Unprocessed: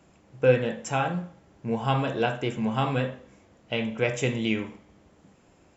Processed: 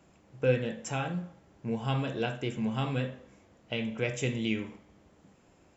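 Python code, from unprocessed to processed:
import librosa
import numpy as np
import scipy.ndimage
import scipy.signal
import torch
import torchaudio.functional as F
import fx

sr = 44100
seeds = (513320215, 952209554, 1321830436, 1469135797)

y = fx.dynamic_eq(x, sr, hz=920.0, q=0.72, threshold_db=-38.0, ratio=4.0, max_db=-7)
y = y * librosa.db_to_amplitude(-3.0)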